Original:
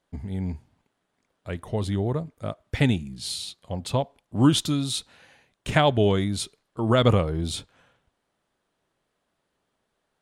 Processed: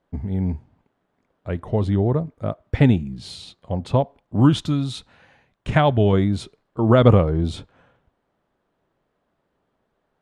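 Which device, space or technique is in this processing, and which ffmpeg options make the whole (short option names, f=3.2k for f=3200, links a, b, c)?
through cloth: -filter_complex "[0:a]lowpass=8.9k,highshelf=f=2.5k:g=-16,asettb=1/sr,asplit=3[a][b][c];[a]atrim=end=4.404[d];[b]atrim=start=4.4:end=6.13,asetpts=PTS-STARTPTS,afade=t=in:d=0.004:c=qsin,afade=t=out:st=1.726:d=0.004:c=qsin,equalizer=f=390:t=o:w=1.8:g=-5[e];[c]atrim=start=6.126[f];[d][e]acrossfade=d=0.004:c1=hsin:c2=qsin[g];[g][f]acrossfade=d=0.004:c1=qsin:c2=hsin,volume=6.5dB"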